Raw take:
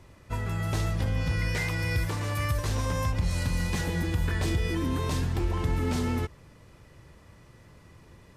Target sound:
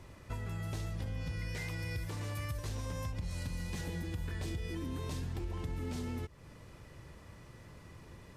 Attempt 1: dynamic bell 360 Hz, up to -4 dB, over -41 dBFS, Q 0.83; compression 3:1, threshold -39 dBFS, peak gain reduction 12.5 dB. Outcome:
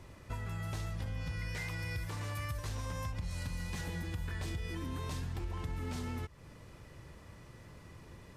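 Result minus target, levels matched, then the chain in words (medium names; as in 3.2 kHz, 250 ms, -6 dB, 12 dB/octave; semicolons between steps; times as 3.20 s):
1 kHz band +3.0 dB
dynamic bell 1.2 kHz, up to -4 dB, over -41 dBFS, Q 0.83; compression 3:1, threshold -39 dBFS, peak gain reduction 13 dB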